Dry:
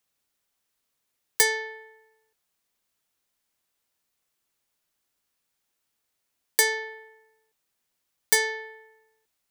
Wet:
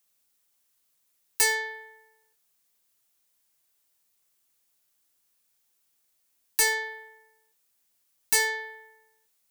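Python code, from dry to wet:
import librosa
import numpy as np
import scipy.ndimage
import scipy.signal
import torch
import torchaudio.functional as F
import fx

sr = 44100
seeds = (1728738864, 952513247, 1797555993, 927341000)

y = fx.high_shelf(x, sr, hz=5300.0, db=10.0)
y = np.clip(y, -10.0 ** (-16.0 / 20.0), 10.0 ** (-16.0 / 20.0))
y = fx.rev_gated(y, sr, seeds[0], gate_ms=140, shape='falling', drr_db=9.5)
y = y * 10.0 ** (-1.5 / 20.0)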